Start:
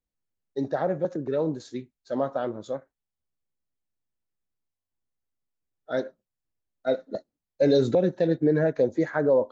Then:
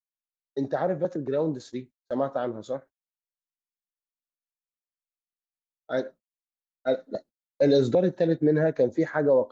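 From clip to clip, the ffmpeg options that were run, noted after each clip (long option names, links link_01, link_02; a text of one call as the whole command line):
ffmpeg -i in.wav -af "agate=range=-30dB:threshold=-45dB:ratio=16:detection=peak" out.wav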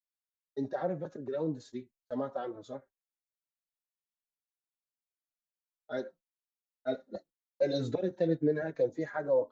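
ffmpeg -i in.wav -filter_complex "[0:a]asplit=2[link_01][link_02];[link_02]adelay=4.2,afreqshift=-1.9[link_03];[link_01][link_03]amix=inputs=2:normalize=1,volume=-5dB" out.wav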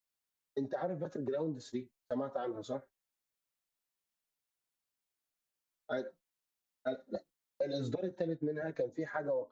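ffmpeg -i in.wav -af "acompressor=threshold=-38dB:ratio=6,volume=5dB" out.wav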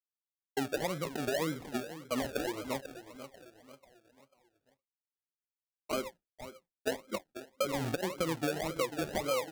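ffmpeg -i in.wav -af "agate=range=-33dB:threshold=-52dB:ratio=3:detection=peak,aecho=1:1:492|984|1476|1968:0.237|0.0996|0.0418|0.0176,acrusher=samples=34:mix=1:aa=0.000001:lfo=1:lforange=20.4:lforate=1.8,volume=2.5dB" out.wav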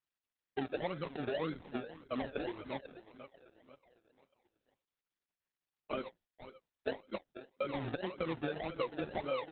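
ffmpeg -i in.wav -af "volume=-3dB" -ar 48000 -c:a libopus -b:a 8k out.opus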